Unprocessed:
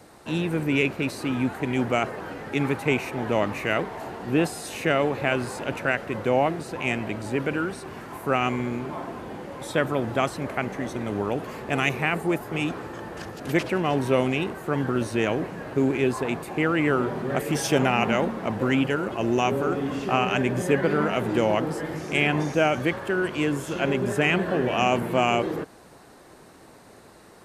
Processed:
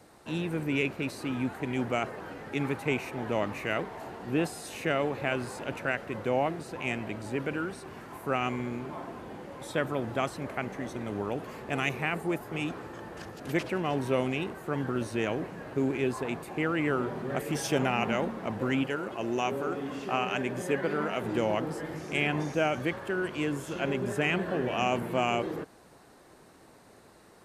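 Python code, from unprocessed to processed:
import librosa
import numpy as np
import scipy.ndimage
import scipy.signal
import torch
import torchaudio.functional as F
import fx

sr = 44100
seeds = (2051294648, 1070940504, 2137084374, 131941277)

y = fx.low_shelf(x, sr, hz=150.0, db=-9.0, at=(18.84, 21.24))
y = F.gain(torch.from_numpy(y), -6.0).numpy()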